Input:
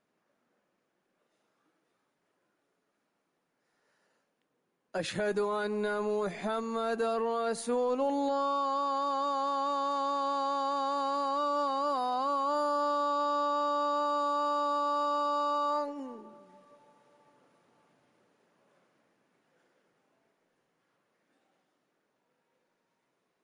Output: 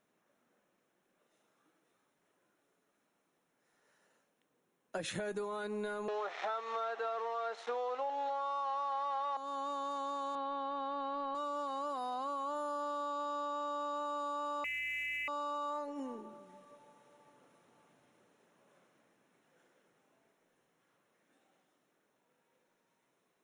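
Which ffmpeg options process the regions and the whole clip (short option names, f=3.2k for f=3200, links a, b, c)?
-filter_complex "[0:a]asettb=1/sr,asplit=3[a][b][c];[a]atrim=end=6.084[d];[b]atrim=start=6.08:end=9.37,asetpts=PTS-STARTPTS,afade=t=in:d=0.004:c=qsin,afade=t=out:st=3.286:d=0.004:c=qsin,acontrast=35,aeval=exprs='val(0)*gte(abs(val(0)),0.0211)':c=same,highpass=f=420:w=0.5412,highpass=f=420:w=1.3066,equalizer=f=790:t=q:w=4:g=9,equalizer=f=1.3k:t=q:w=4:g=8,equalizer=f=1.9k:t=q:w=4:g=4,lowpass=f=4.8k:w=0.5412,lowpass=f=4.8k:w=1.3066[e];[c]atrim=start=9.366[f];[d][e]acrossfade=d=0.004:c1=hsin:c2=qsin[g];[g][f]acrossfade=d=0.004:c1=qsin:c2=hsin,asettb=1/sr,asplit=3[h][i][j];[h]atrim=end=10.354[k];[i]atrim=start=10.35:end=11.35,asetpts=PTS-STARTPTS,afade=t=in:d=0.004:c=qsin,afade=t=out:st=0.996:d=0.004:c=qsin,lowpass=f=3.9k:w=0.5412,lowpass=f=3.9k:w=1.3066,lowshelf=f=130:g=11[l];[j]atrim=start=11.346[m];[k][l]acrossfade=d=0.004:c1=hsin:c2=qsin[n];[n][m]acrossfade=d=0.004:c1=qsin:c2=hsin,asettb=1/sr,asplit=3[o][p][q];[o]atrim=end=14.644[r];[p]atrim=start=14.64:end=15.28,asetpts=PTS-STARTPTS,afade=t=in:d=0.004:c=qsin,afade=t=out:st=0.636:d=0.004:c=qsin,lowpass=f=2.7k:t=q:w=0.5098,lowpass=f=2.7k:t=q:w=0.6013,lowpass=f=2.7k:t=q:w=0.9,lowpass=f=2.7k:t=q:w=2.563,afreqshift=-3200,asoftclip=type=hard:threshold=-23.5dB,aeval=exprs='val(0)+0.00126*(sin(2*PI*60*n/s)+sin(2*PI*2*60*n/s)/2+sin(2*PI*3*60*n/s)/3+sin(2*PI*4*60*n/s)/4+sin(2*PI*5*60*n/s)/5)':c=same[s];[q]atrim=start=15.276[t];[r][s]acrossfade=d=0.004:c1=hsin:c2=qsin[u];[u][t]acrossfade=d=0.004:c1=qsin:c2=hsin,highshelf=f=5.1k:g=5.5,bandreject=f=4.7k:w=5.1,acompressor=threshold=-36dB:ratio=6"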